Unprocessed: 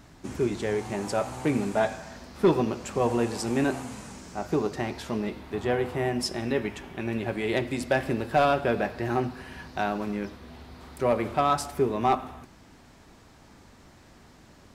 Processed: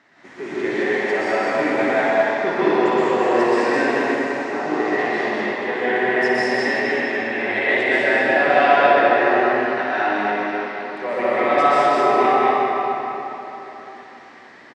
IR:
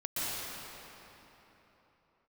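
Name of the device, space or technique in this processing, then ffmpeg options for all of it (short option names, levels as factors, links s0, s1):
station announcement: -filter_complex "[0:a]highpass=370,lowpass=4100,equalizer=f=1900:t=o:w=0.39:g=11.5,aecho=1:1:61.22|207:0.447|0.708[s0];[1:a]atrim=start_sample=2205[s1];[s0][s1]afir=irnorm=-1:irlink=0,volume=1.12"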